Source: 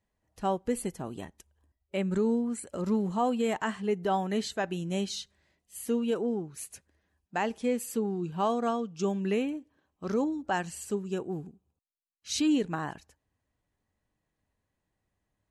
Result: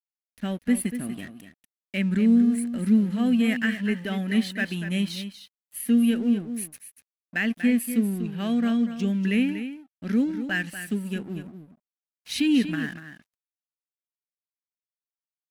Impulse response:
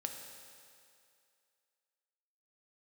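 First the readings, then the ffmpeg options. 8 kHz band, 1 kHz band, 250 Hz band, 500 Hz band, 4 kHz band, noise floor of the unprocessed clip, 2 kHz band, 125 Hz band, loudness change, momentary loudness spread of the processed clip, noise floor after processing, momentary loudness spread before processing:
+2.5 dB, -10.0 dB, +9.0 dB, -5.0 dB, +5.0 dB, -83 dBFS, +9.5 dB, +6.5 dB, +6.0 dB, 14 LU, under -85 dBFS, 13 LU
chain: -af "firequalizer=gain_entry='entry(120,0);entry(240,12);entry(370,-5);entry(630,-5);entry(910,-19);entry(1700,12);entry(7000,-7);entry(10000,10)':delay=0.05:min_phase=1,aeval=exprs='sgn(val(0))*max(abs(val(0))-0.00473,0)':c=same,aecho=1:1:240:0.299"

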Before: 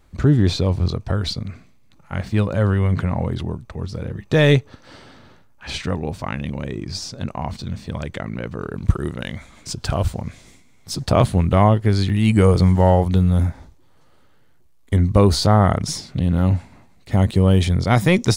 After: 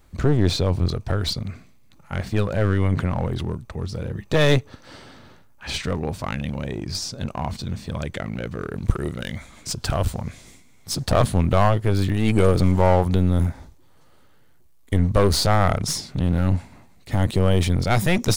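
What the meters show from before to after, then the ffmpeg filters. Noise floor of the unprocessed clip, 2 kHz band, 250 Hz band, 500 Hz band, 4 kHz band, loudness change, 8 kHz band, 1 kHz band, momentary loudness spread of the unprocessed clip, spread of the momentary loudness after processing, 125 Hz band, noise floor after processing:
-51 dBFS, -1.0 dB, -4.0 dB, -2.0 dB, 0.0 dB, -3.0 dB, +1.5 dB, -2.0 dB, 15 LU, 12 LU, -3.5 dB, -51 dBFS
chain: -af "highshelf=f=9300:g=7,aeval=exprs='clip(val(0),-1,0.0708)':c=same"

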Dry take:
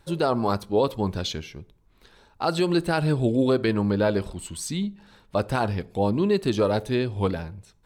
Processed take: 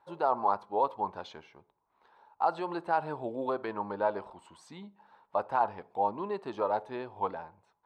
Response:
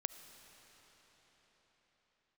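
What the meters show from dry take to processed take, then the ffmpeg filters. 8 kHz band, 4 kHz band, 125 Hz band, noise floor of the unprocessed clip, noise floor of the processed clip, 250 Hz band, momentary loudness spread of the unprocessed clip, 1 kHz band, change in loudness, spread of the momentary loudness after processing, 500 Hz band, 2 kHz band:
under -25 dB, -19.5 dB, -23.5 dB, -60 dBFS, -76 dBFS, -17.0 dB, 10 LU, +0.5 dB, -7.5 dB, 19 LU, -9.0 dB, -9.5 dB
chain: -af "bandpass=f=900:t=q:w=3.5:csg=0,volume=1.5"

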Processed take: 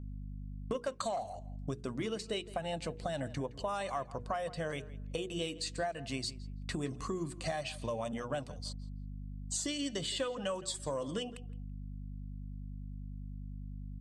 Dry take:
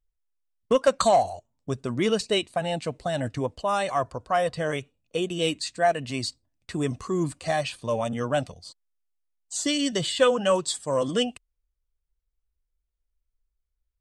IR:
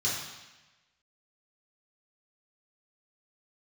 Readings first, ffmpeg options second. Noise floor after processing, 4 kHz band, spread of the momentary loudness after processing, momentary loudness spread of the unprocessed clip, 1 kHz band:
-47 dBFS, -10.0 dB, 10 LU, 11 LU, -13.0 dB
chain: -filter_complex "[0:a]aeval=exprs='val(0)+0.00891*(sin(2*PI*50*n/s)+sin(2*PI*2*50*n/s)/2+sin(2*PI*3*50*n/s)/3+sin(2*PI*4*50*n/s)/4+sin(2*PI*5*50*n/s)/5)':c=same,acompressor=threshold=0.0224:ratio=10,bandreject=f=60:t=h:w=6,bandreject=f=120:t=h:w=6,bandreject=f=180:t=h:w=6,bandreject=f=240:t=h:w=6,bandreject=f=300:t=h:w=6,bandreject=f=360:t=h:w=6,bandreject=f=420:t=h:w=6,bandreject=f=480:t=h:w=6,asplit=2[s0][s1];[s1]adelay=166,lowpass=f=2800:p=1,volume=0.141,asplit=2[s2][s3];[s3]adelay=166,lowpass=f=2800:p=1,volume=0.22[s4];[s2][s4]amix=inputs=2:normalize=0[s5];[s0][s5]amix=inputs=2:normalize=0"

